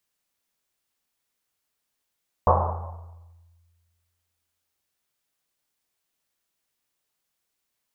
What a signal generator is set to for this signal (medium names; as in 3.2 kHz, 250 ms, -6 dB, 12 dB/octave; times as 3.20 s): Risset drum length 3.52 s, pitch 85 Hz, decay 1.83 s, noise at 810 Hz, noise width 620 Hz, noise 55%